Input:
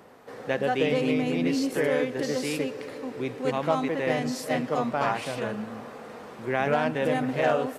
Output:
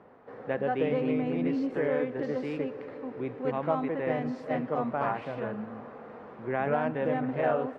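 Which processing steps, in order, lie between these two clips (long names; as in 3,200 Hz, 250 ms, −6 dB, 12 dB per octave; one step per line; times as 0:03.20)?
low-pass filter 1,700 Hz 12 dB per octave
level −3 dB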